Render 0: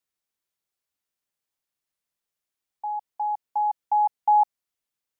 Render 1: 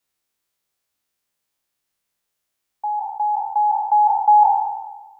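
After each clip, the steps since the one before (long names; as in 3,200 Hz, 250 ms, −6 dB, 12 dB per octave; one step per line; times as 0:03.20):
peak hold with a decay on every bin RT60 1.21 s
level +6 dB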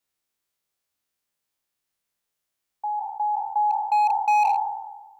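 gain into a clipping stage and back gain 12.5 dB
level −4 dB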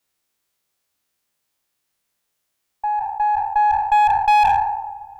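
one-sided soft clipper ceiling −18.5 dBFS
delay with a low-pass on its return 141 ms, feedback 81%, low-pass 780 Hz, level −21 dB
level +7 dB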